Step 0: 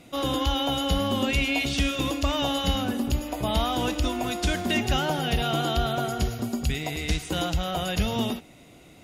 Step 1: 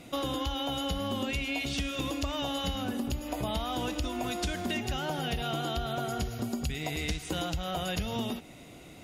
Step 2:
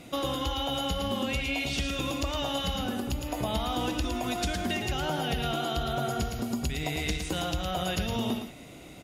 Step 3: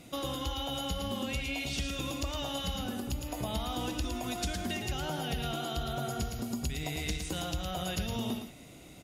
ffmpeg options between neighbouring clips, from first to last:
ffmpeg -i in.wav -af "acompressor=threshold=-31dB:ratio=6,volume=1.5dB" out.wav
ffmpeg -i in.wav -af "aecho=1:1:112:0.501,volume=1.5dB" out.wav
ffmpeg -i in.wav -af "bass=frequency=250:gain=3,treble=frequency=4000:gain=5,volume=-6dB" out.wav

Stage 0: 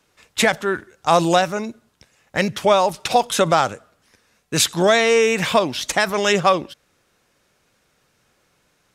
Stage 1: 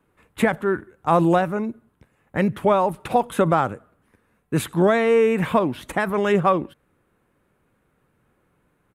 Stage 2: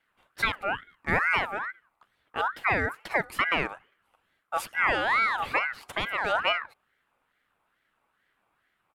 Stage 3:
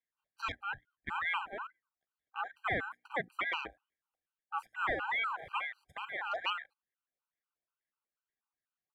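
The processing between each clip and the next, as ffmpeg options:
ffmpeg -i in.wav -af "firequalizer=gain_entry='entry(310,0);entry(630,-7);entry(1000,-4);entry(5400,-28);entry(9500,-11)':delay=0.05:min_phase=1,volume=2.5dB" out.wav
ffmpeg -i in.wav -af "aeval=exprs='val(0)*sin(2*PI*1400*n/s+1400*0.3/2.3*sin(2*PI*2.3*n/s))':channel_layout=same,volume=-5dB" out.wav
ffmpeg -i in.wav -af "bandreject=frequency=60:width_type=h:width=6,bandreject=frequency=120:width_type=h:width=6,bandreject=frequency=180:width_type=h:width=6,bandreject=frequency=240:width_type=h:width=6,bandreject=frequency=300:width_type=h:width=6,afwtdn=0.02,afftfilt=real='re*gt(sin(2*PI*4.1*pts/sr)*(1-2*mod(floor(b*sr/1024/790),2)),0)':imag='im*gt(sin(2*PI*4.1*pts/sr)*(1-2*mod(floor(b*sr/1024/790),2)),0)':win_size=1024:overlap=0.75,volume=-6dB" out.wav

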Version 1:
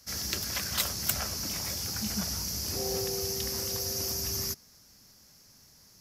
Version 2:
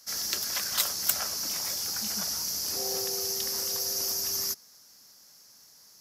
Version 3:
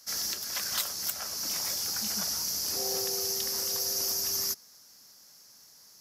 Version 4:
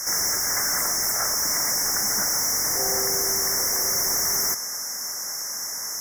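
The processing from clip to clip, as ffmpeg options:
ffmpeg -i in.wav -af "highpass=frequency=780:poles=1,equalizer=frequency=2400:width=1.5:gain=-4.5,volume=3.5dB" out.wav
ffmpeg -i in.wav -af "alimiter=limit=-15dB:level=0:latency=1:release=429" out.wav
ffmpeg -i in.wav -filter_complex "[0:a]asplit=2[link_01][link_02];[link_02]highpass=frequency=720:poles=1,volume=36dB,asoftclip=type=tanh:threshold=-14.5dB[link_03];[link_01][link_03]amix=inputs=2:normalize=0,lowpass=frequency=8000:poles=1,volume=-6dB,asuperstop=centerf=3400:order=20:qfactor=1.1" out.wav

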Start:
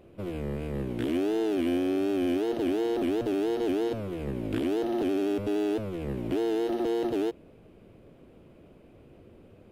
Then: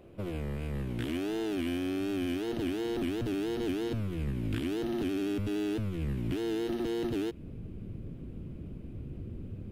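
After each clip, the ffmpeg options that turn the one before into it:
ffmpeg -i in.wav -filter_complex "[0:a]asubboost=boost=8:cutoff=220,acrossover=split=940[link_01][link_02];[link_01]acompressor=threshold=-32dB:ratio=4[link_03];[link_03][link_02]amix=inputs=2:normalize=0" out.wav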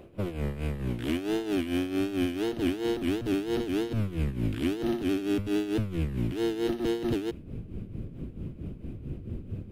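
ffmpeg -i in.wav -af "tremolo=f=4.5:d=0.69,volume=6.5dB" out.wav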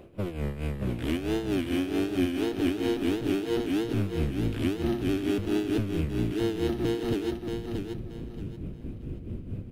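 ffmpeg -i in.wav -af "aecho=1:1:628|1256|1884|2512:0.531|0.149|0.0416|0.0117" out.wav

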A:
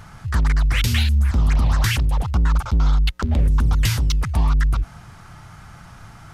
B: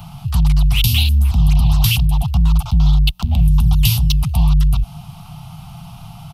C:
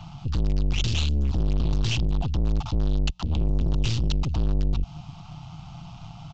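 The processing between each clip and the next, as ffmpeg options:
ffmpeg -i in.wav -filter_complex "[0:a]firequalizer=gain_entry='entry(100,0);entry(150,12);entry(280,-7);entry(490,-20);entry(700,8);entry(1200,-2);entry(1700,-18);entry(2700,8);entry(6900,-5);entry(12000,10)':delay=0.05:min_phase=1,acrossover=split=130|3000[link_01][link_02][link_03];[link_02]acompressor=threshold=-45dB:ratio=1.5[link_04];[link_01][link_04][link_03]amix=inputs=3:normalize=0,volume=4dB" out.wav
ffmpeg -i in.wav -af "aeval=exprs='(tanh(8.91*val(0)+0.65)-tanh(0.65))/8.91':channel_layout=same,aresample=16000,aresample=44100,volume=-2.5dB" out.wav

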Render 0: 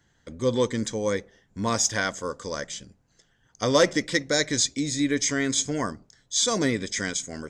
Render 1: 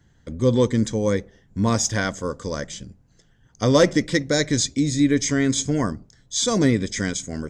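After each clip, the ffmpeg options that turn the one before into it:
ffmpeg -i in.wav -af "lowshelf=frequency=330:gain=11.5" out.wav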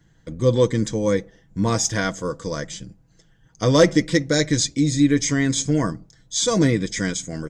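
ffmpeg -i in.wav -af "aecho=1:1:6.2:0.47" out.wav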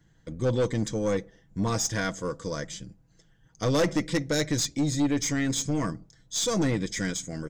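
ffmpeg -i in.wav -af "aeval=exprs='(tanh(5.62*val(0)+0.25)-tanh(0.25))/5.62':channel_layout=same,volume=-4dB" out.wav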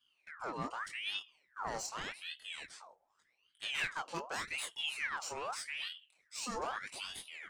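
ffmpeg -i in.wav -af "flanger=delay=19:depth=7.8:speed=0.29,aeval=exprs='val(0)*sin(2*PI*1900*n/s+1900*0.65/0.84*sin(2*PI*0.84*n/s))':channel_layout=same,volume=-8dB" out.wav

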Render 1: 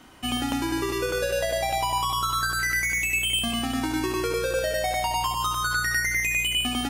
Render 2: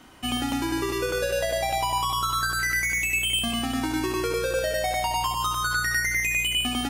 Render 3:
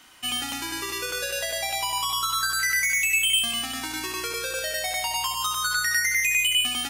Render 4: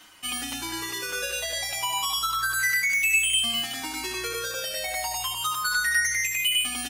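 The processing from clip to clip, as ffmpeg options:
ffmpeg -i in.wav -af "asoftclip=type=hard:threshold=-17dB" out.wav
ffmpeg -i in.wav -af "tiltshelf=frequency=970:gain=-9,volume=-4dB" out.wav
ffmpeg -i in.wav -filter_complex "[0:a]areverse,acompressor=mode=upward:threshold=-34dB:ratio=2.5,areverse,aecho=1:1:217:0.0708,asplit=2[link_01][link_02];[link_02]adelay=6.7,afreqshift=-1.1[link_03];[link_01][link_03]amix=inputs=2:normalize=1,volume=2dB" out.wav

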